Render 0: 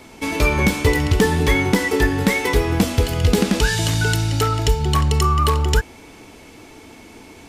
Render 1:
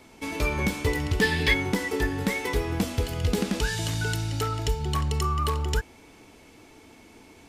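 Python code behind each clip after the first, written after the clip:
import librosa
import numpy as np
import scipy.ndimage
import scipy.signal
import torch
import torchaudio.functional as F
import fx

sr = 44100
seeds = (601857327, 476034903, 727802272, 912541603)

y = fx.spec_box(x, sr, start_s=1.21, length_s=0.33, low_hz=1500.0, high_hz=5400.0, gain_db=10)
y = y * 10.0 ** (-9.0 / 20.0)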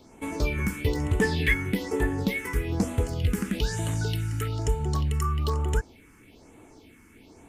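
y = fx.phaser_stages(x, sr, stages=4, low_hz=620.0, high_hz=4900.0, hz=1.1, feedback_pct=25)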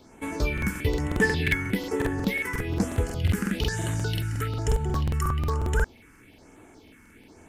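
y = fx.peak_eq(x, sr, hz=1600.0, db=6.0, octaves=0.54)
y = fx.buffer_crackle(y, sr, first_s=0.53, period_s=0.18, block=2048, kind='repeat')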